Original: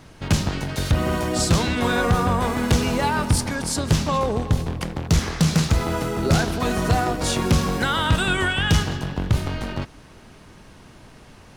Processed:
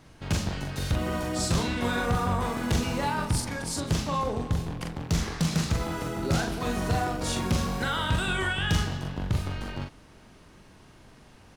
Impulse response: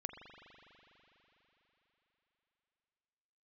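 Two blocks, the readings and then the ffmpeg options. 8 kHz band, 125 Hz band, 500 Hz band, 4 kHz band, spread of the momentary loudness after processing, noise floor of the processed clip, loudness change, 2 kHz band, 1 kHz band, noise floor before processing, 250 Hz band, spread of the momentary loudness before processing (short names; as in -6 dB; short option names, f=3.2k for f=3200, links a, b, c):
-6.5 dB, -7.0 dB, -7.5 dB, -6.5 dB, 6 LU, -53 dBFS, -6.5 dB, -6.5 dB, -6.0 dB, -47 dBFS, -6.5 dB, 7 LU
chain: -filter_complex "[0:a]asplit=2[a][b];[b]adelay=42,volume=-4dB[c];[a][c]amix=inputs=2:normalize=0,volume=-8dB"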